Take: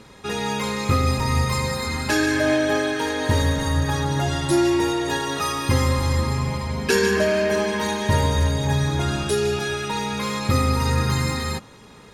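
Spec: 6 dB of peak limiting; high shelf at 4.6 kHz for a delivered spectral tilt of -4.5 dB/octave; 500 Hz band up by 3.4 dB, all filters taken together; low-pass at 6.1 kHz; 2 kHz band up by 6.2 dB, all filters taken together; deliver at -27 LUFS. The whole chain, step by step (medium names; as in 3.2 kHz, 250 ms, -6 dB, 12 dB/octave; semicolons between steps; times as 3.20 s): low-pass 6.1 kHz; peaking EQ 500 Hz +4 dB; peaking EQ 2 kHz +6 dB; treble shelf 4.6 kHz +9 dB; trim -7 dB; peak limiter -17 dBFS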